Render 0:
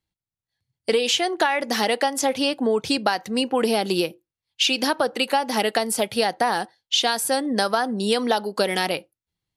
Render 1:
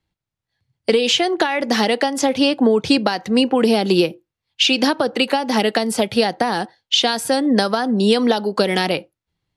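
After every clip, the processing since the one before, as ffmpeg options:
ffmpeg -i in.wav -filter_complex "[0:a]acrossover=split=360|3000[link_01][link_02][link_03];[link_02]acompressor=threshold=-27dB:ratio=6[link_04];[link_01][link_04][link_03]amix=inputs=3:normalize=0,aemphasis=mode=reproduction:type=50fm,volume=8.5dB" out.wav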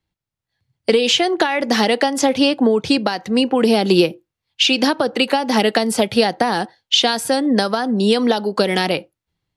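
ffmpeg -i in.wav -af "dynaudnorm=framelen=210:gausssize=5:maxgain=11.5dB,volume=-2dB" out.wav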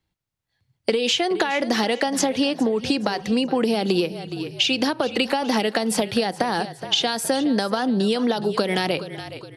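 ffmpeg -i in.wav -filter_complex "[0:a]asplit=4[link_01][link_02][link_03][link_04];[link_02]adelay=417,afreqshift=-35,volume=-17.5dB[link_05];[link_03]adelay=834,afreqshift=-70,volume=-25dB[link_06];[link_04]adelay=1251,afreqshift=-105,volume=-32.6dB[link_07];[link_01][link_05][link_06][link_07]amix=inputs=4:normalize=0,acompressor=threshold=-19dB:ratio=6,volume=1dB" out.wav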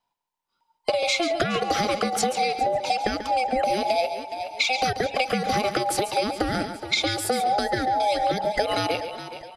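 ffmpeg -i in.wav -filter_complex "[0:a]afftfilt=real='real(if(between(b,1,1008),(2*floor((b-1)/48)+1)*48-b,b),0)':imag='imag(if(between(b,1,1008),(2*floor((b-1)/48)+1)*48-b,b),0)*if(between(b,1,1008),-1,1)':win_size=2048:overlap=0.75,asplit=2[link_01][link_02];[link_02]aecho=0:1:139:0.299[link_03];[link_01][link_03]amix=inputs=2:normalize=0,volume=-2.5dB" out.wav

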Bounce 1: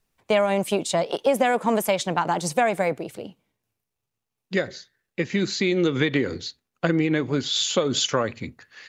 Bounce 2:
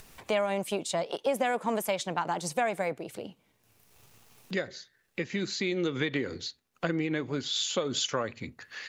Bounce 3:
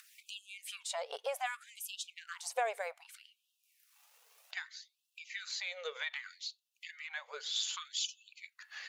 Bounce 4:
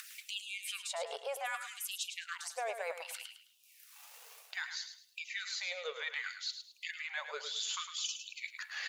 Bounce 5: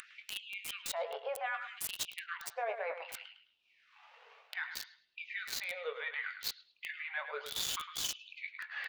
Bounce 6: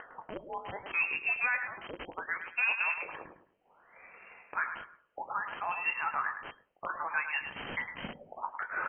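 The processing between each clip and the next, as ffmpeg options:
ffmpeg -i in.wav -af "lowshelf=frequency=450:gain=-3,acompressor=mode=upward:threshold=-24dB:ratio=2.5,volume=-6.5dB" out.wav
ffmpeg -i in.wav -af "lowshelf=frequency=330:gain=-8.5,aphaser=in_gain=1:out_gain=1:delay=2.9:decay=0.29:speed=0.39:type=triangular,afftfilt=real='re*gte(b*sr/1024,410*pow(2600/410,0.5+0.5*sin(2*PI*0.64*pts/sr)))':imag='im*gte(b*sr/1024,410*pow(2600/410,0.5+0.5*sin(2*PI*0.64*pts/sr)))':win_size=1024:overlap=0.75,volume=-5dB" out.wav
ffmpeg -i in.wav -af "areverse,acompressor=threshold=-48dB:ratio=5,areverse,aecho=1:1:106|212|318:0.355|0.103|0.0298,volume=10.5dB" out.wav
ffmpeg -i in.wav -filter_complex "[0:a]asplit=2[link_01][link_02];[link_02]adelay=21,volume=-8.5dB[link_03];[link_01][link_03]amix=inputs=2:normalize=0,acrossover=split=610|3200[link_04][link_05][link_06];[link_06]acrusher=bits=5:mix=0:aa=0.000001[link_07];[link_04][link_05][link_07]amix=inputs=3:normalize=0,volume=1dB" out.wav
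ffmpeg -i in.wav -af "lowpass=frequency=2700:width_type=q:width=0.5098,lowpass=frequency=2700:width_type=q:width=0.6013,lowpass=frequency=2700:width_type=q:width=0.9,lowpass=frequency=2700:width_type=q:width=2.563,afreqshift=-3200,volume=7dB" out.wav

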